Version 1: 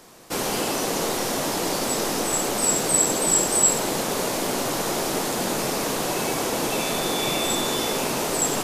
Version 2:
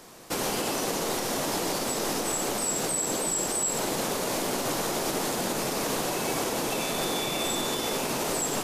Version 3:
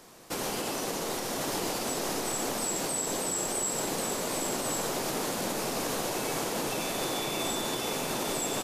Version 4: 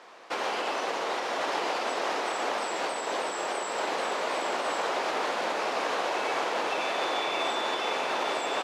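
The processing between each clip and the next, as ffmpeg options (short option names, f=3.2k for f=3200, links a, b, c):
-af "alimiter=limit=-19dB:level=0:latency=1:release=113"
-af "aecho=1:1:1093:0.562,volume=-4dB"
-af "highpass=610,lowpass=2.8k,volume=7.5dB"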